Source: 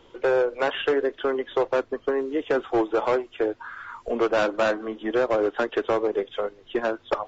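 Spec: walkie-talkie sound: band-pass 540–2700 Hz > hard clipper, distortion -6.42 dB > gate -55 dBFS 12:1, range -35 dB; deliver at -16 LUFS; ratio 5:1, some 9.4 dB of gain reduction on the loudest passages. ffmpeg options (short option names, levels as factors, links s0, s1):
-af "acompressor=threshold=0.0355:ratio=5,highpass=540,lowpass=2700,asoftclip=type=hard:threshold=0.0141,agate=range=0.0178:threshold=0.00178:ratio=12,volume=18.8"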